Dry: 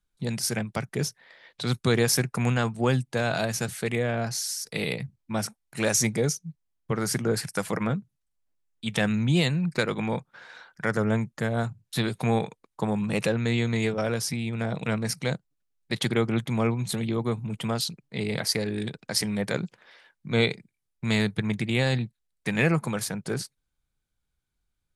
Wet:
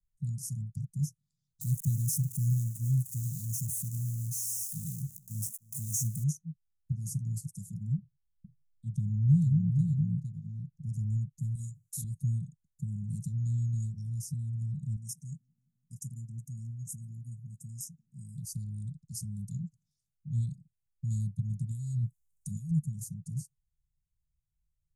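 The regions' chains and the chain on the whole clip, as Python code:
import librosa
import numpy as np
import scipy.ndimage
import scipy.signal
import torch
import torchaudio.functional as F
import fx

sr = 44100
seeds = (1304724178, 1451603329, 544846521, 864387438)

y = fx.chain(x, sr, fx.crossing_spikes(level_db=-20.5),
    fx.echo_single(ms=309, db=-23.0), at=(1.61, 6.24))
y = fx.chain(y, sr, fx.bass_treble(bass_db=3, treble_db=-12),
    fx.echo_single(ms=461, db=-5.0), at=(7.98, 10.89))
y = fx.chain(y, sr, fx.bass_treble(bass_db=-12, treble_db=11),
    fx.doubler(ms=43.0, db=-2.5), at=(11.55, 12.04))
y = fx.chain(y, sr, fx.brickwall_bandstop(low_hz=350.0, high_hz=4900.0),
    fx.bass_treble(bass_db=-10, treble_db=4),
    fx.echo_wet_bandpass(ms=172, feedback_pct=68, hz=520.0, wet_db=-18.5), at=(14.96, 18.38))
y = fx.chain(y, sr, fx.high_shelf(hz=4400.0, db=10.0),
    fx.over_compress(threshold_db=-29.0, ratio=-1.0), at=(21.71, 22.71))
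y = scipy.signal.sosfilt(scipy.signal.cheby1(4, 1.0, [160.0, 6600.0], 'bandstop', fs=sr, output='sos'), y)
y = fx.high_shelf(y, sr, hz=3800.0, db=-10.5)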